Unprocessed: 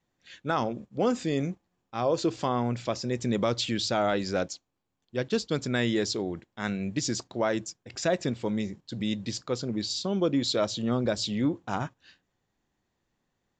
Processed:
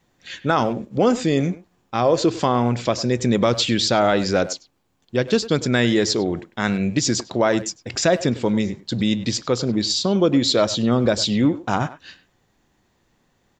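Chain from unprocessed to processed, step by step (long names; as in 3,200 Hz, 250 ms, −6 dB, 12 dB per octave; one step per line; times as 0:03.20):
in parallel at +3 dB: downward compressor, threshold −36 dBFS, peak gain reduction 14.5 dB
on the sum: far-end echo of a speakerphone 100 ms, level −14 dB
level +6 dB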